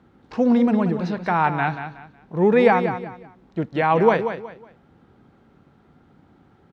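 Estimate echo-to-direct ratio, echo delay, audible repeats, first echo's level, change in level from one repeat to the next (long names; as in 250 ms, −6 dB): −9.0 dB, 184 ms, 3, −9.5 dB, −10.5 dB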